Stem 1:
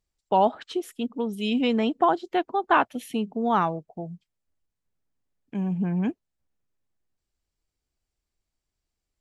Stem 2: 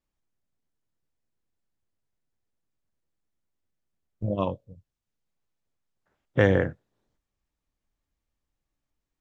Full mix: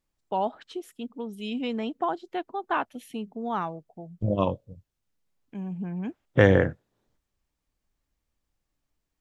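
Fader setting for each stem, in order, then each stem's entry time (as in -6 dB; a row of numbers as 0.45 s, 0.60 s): -7.0 dB, +2.5 dB; 0.00 s, 0.00 s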